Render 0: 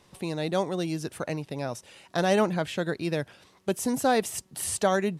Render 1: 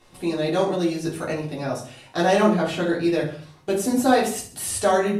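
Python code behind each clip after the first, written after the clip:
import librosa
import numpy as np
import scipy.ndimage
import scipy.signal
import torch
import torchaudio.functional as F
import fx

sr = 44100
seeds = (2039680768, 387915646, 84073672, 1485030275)

y = fx.echo_feedback(x, sr, ms=67, feedback_pct=41, wet_db=-13)
y = fx.room_shoebox(y, sr, seeds[0], volume_m3=190.0, walls='furnished', distance_m=3.4)
y = y * 10.0 ** (-2.5 / 20.0)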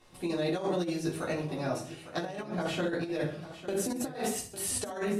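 y = fx.over_compress(x, sr, threshold_db=-23.0, ratio=-0.5)
y = y + 10.0 ** (-13.5 / 20.0) * np.pad(y, (int(852 * sr / 1000.0), 0))[:len(y)]
y = y * 10.0 ** (-8.0 / 20.0)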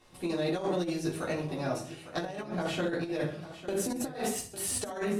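y = fx.cheby_harmonics(x, sr, harmonics=(8,), levels_db=(-32,), full_scale_db=-17.5)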